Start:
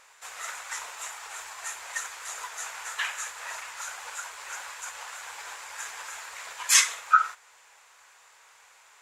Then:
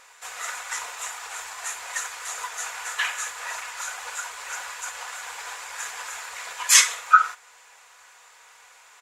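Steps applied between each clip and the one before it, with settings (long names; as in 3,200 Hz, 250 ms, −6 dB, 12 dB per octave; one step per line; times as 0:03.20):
comb filter 4.1 ms, depth 31%
level +4 dB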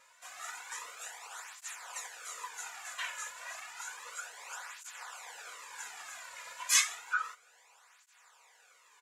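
through-zero flanger with one copy inverted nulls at 0.31 Hz, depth 2.7 ms
level −8 dB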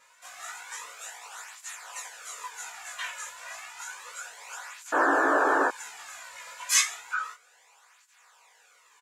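sound drawn into the spectrogram noise, 0:04.92–0:05.69, 250–1,800 Hz −26 dBFS
double-tracking delay 18 ms −2 dB
level +1 dB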